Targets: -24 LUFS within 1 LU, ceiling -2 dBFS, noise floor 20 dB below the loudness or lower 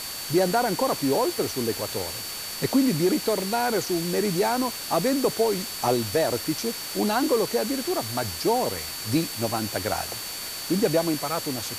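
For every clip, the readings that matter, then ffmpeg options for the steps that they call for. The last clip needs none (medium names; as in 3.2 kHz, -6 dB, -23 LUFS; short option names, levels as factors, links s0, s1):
steady tone 4.5 kHz; tone level -37 dBFS; noise floor -34 dBFS; noise floor target -45 dBFS; loudness -25.0 LUFS; peak level -10.5 dBFS; loudness target -24.0 LUFS
-> -af "bandreject=f=4500:w=30"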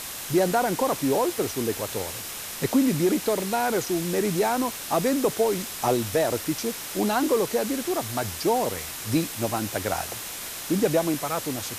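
steady tone not found; noise floor -36 dBFS; noise floor target -46 dBFS
-> -af "afftdn=nr=10:nf=-36"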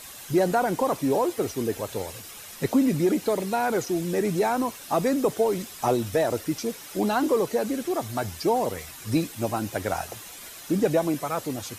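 noise floor -43 dBFS; noise floor target -46 dBFS
-> -af "afftdn=nr=6:nf=-43"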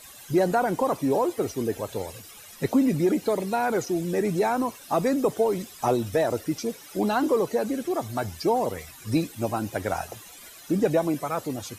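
noise floor -46 dBFS; loudness -26.0 LUFS; peak level -11.0 dBFS; loudness target -24.0 LUFS
-> -af "volume=1.26"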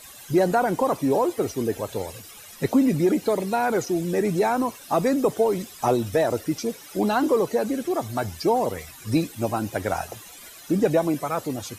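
loudness -24.0 LUFS; peak level -9.0 dBFS; noise floor -44 dBFS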